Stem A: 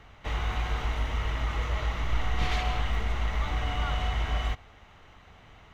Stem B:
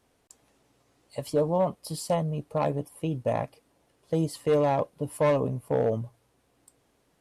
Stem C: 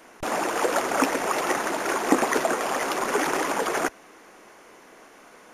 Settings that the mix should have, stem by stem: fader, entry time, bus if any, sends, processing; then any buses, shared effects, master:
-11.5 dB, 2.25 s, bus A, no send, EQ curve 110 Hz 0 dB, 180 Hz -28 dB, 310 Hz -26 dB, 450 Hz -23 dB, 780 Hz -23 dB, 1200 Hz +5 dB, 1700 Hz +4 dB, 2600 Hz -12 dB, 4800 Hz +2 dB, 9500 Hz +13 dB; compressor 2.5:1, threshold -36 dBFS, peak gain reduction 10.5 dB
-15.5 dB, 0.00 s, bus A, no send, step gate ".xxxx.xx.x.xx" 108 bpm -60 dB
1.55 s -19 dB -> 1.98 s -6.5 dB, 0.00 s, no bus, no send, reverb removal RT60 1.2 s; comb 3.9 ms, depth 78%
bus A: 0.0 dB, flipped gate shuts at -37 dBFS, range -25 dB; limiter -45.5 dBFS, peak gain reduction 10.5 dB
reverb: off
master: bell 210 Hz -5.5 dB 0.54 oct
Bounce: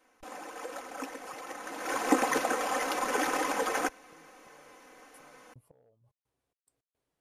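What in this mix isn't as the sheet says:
stem A: muted; stem C: missing reverb removal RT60 1.2 s

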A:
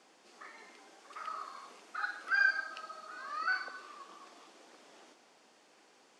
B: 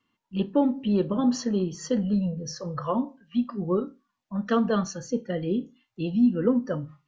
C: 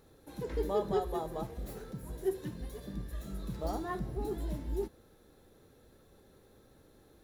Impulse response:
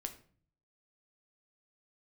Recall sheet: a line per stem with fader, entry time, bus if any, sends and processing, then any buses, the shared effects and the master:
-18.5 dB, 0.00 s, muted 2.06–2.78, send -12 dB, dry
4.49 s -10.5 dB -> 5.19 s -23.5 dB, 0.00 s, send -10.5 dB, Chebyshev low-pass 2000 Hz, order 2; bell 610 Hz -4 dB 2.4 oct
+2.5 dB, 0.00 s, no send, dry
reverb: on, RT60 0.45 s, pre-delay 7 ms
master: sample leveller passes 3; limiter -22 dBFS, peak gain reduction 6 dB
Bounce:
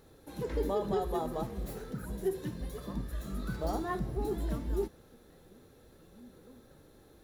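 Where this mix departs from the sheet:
stem B -10.5 dB -> -20.5 dB; master: missing sample leveller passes 3

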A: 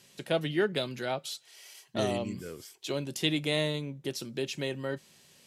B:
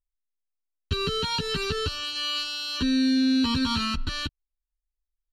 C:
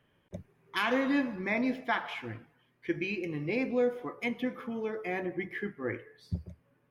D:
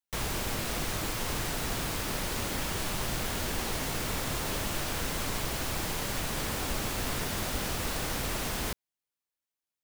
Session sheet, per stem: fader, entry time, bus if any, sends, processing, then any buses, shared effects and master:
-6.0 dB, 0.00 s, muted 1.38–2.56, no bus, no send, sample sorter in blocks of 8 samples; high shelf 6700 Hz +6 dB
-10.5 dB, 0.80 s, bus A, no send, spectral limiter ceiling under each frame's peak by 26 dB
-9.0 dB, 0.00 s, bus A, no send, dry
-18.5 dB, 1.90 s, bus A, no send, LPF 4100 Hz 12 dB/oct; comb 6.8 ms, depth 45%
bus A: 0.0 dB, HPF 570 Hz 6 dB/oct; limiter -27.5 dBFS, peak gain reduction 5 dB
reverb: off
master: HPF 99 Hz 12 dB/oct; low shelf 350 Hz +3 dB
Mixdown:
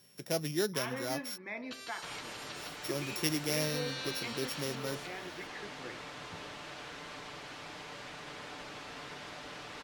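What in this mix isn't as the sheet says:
stem B -10.5 dB -> -19.0 dB; stem D -18.5 dB -> -9.0 dB; master: missing HPF 99 Hz 12 dB/oct

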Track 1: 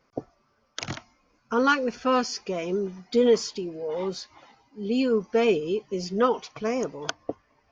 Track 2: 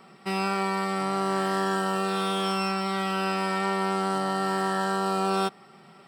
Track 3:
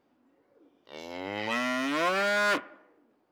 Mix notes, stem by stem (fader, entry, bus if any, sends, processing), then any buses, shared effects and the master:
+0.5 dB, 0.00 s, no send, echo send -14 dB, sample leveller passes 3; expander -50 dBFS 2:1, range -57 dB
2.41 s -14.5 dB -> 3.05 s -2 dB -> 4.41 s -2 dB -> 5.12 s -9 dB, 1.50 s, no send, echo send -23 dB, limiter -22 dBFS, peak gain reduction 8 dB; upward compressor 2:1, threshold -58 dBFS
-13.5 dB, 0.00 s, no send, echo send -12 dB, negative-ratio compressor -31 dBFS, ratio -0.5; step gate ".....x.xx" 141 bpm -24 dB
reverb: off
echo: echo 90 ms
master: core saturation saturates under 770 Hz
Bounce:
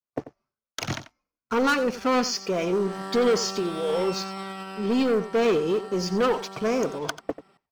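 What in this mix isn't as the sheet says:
stem 1 +0.5 dB -> -6.5 dB; stem 3: muted; master: missing core saturation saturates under 770 Hz

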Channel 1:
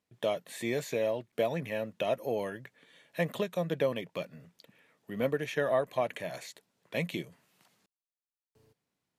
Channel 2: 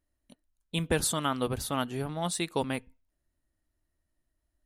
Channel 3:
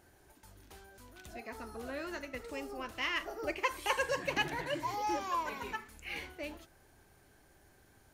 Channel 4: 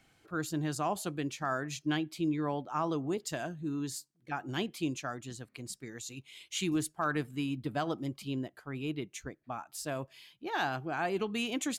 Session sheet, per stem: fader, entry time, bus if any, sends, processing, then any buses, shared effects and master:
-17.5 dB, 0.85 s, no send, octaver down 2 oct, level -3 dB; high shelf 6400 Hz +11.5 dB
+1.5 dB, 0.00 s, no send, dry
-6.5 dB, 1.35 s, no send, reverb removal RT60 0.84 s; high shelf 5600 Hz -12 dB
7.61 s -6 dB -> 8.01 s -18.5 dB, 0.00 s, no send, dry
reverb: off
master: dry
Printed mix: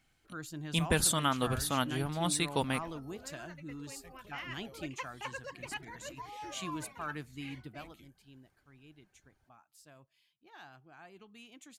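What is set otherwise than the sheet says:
stem 1 -17.5 dB -> -24.5 dB; master: extra bell 430 Hz -5.5 dB 1.8 oct

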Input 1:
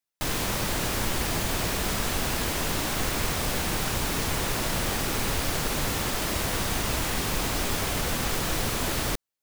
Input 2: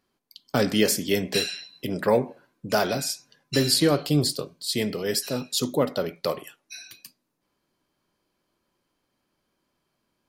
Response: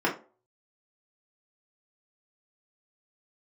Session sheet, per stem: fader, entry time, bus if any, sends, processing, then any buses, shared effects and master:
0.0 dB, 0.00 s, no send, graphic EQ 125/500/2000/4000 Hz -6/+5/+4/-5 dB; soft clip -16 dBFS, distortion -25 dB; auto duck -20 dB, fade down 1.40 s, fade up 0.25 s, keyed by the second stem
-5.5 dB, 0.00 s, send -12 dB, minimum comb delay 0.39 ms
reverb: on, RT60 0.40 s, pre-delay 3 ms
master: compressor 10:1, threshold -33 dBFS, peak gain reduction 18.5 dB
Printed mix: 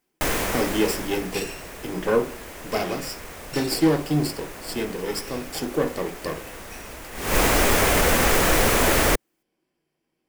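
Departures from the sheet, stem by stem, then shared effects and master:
stem 1 0.0 dB -> +9.0 dB; master: missing compressor 10:1, threshold -33 dBFS, peak gain reduction 18.5 dB

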